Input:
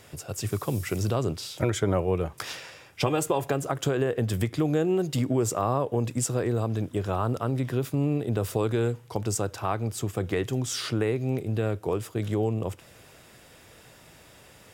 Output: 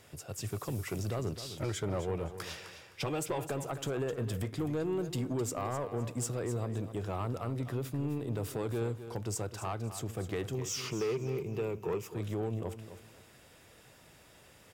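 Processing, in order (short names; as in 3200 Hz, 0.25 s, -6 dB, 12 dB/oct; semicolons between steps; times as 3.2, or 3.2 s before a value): 10.54–12.08 ripple EQ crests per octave 0.77, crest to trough 11 dB; soft clip -20.5 dBFS, distortion -14 dB; feedback echo 0.259 s, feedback 26%, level -11.5 dB; gain -6.5 dB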